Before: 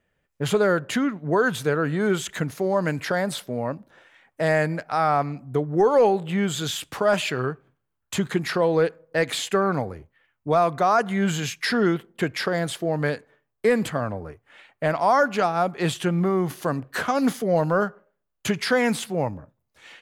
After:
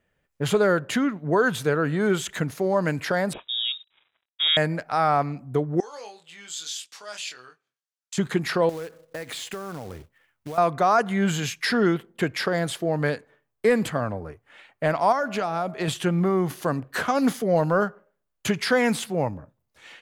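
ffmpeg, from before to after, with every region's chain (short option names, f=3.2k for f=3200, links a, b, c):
-filter_complex "[0:a]asettb=1/sr,asplit=3[a][b][c];[a]atrim=end=3.334[d];[b]atrim=start=3.33:end=4.57,asetpts=PTS-STARTPTS,afade=t=in:d=0.004:c=qsin,afade=t=out:st=1.236:d=0.004:c=qsin,equalizer=f=1.9k:w=5.3:g=-10.5,aeval=exprs='sgn(val(0))*max(abs(val(0))-0.00188,0)':c=same,lowpass=f=3.3k:t=q:w=0.5098,lowpass=f=3.3k:t=q:w=0.6013,lowpass=f=3.3k:t=q:w=0.9,lowpass=f=3.3k:t=q:w=2.563,afreqshift=-3900[e];[c]atrim=start=4.566[f];[d][e]acrossfade=d=0.004:c1=hsin:c2=qsin[g];[g][f]acrossfade=d=0.004:c1=qsin:c2=hsin,asettb=1/sr,asplit=3[h][i][j];[h]atrim=end=5.804[k];[i]atrim=start=5.8:end=8.18,asetpts=PTS-STARTPTS,afade=t=in:d=0.004:c=qsin,afade=t=out:st=2.376:d=0.004:c=qsin,bandpass=f=5.7k:t=q:w=1.6,asplit=2[l][m];[m]adelay=24,volume=-5dB[n];[l][n]amix=inputs=2:normalize=0,atrim=end_sample=104958[o];[j]atrim=start=8.176[p];[k][o]acrossfade=d=0.004:c1=hsin:c2=qsin[q];[q][p]acrossfade=d=0.004:c1=qsin:c2=hsin,asettb=1/sr,asplit=3[r][s][t];[r]atrim=end=8.694[u];[s]atrim=start=8.69:end=10.58,asetpts=PTS-STARTPTS,afade=t=in:d=0.004:c=qsin,afade=t=out:st=1.886:d=0.004:c=qsin,acompressor=threshold=-31dB:ratio=6:attack=3.2:release=140:knee=1:detection=peak,acrusher=bits=3:mode=log:mix=0:aa=0.000001[v];[t]atrim=start=10.576[w];[u][v]acrossfade=d=0.004:c1=hsin:c2=qsin[x];[x][w]acrossfade=d=0.004:c1=qsin:c2=hsin,asettb=1/sr,asplit=3[y][z][aa];[y]atrim=end=15.124[ab];[z]atrim=start=15.12:end=15.88,asetpts=PTS-STARTPTS,afade=t=in:d=0.004:c=qsin,afade=t=out:st=0.756:d=0.004:c=qsin,acompressor=threshold=-22dB:ratio=4:attack=3.2:release=140:knee=1:detection=peak,aeval=exprs='val(0)+0.01*sin(2*PI*640*n/s)':c=same[ac];[aa]atrim=start=15.876[ad];[ab][ac]acrossfade=d=0.004:c1=hsin:c2=qsin[ae];[ae][ad]acrossfade=d=0.004:c1=qsin:c2=hsin"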